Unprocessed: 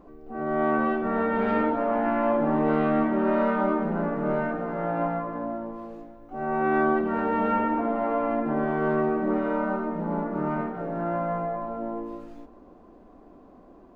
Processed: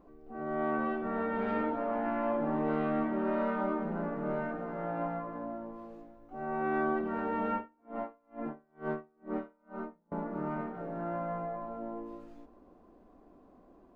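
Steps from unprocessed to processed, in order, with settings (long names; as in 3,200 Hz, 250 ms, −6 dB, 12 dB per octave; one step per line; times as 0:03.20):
0:07.54–0:10.12: tremolo with a sine in dB 2.2 Hz, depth 39 dB
level −8 dB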